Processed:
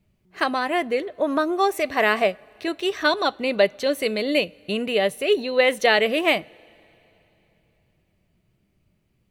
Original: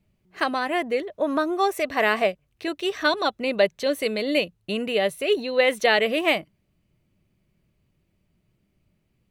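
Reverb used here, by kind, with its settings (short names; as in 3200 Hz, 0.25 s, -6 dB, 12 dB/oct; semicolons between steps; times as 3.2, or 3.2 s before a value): two-slope reverb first 0.25 s, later 3.4 s, from -19 dB, DRR 19.5 dB; gain +1.5 dB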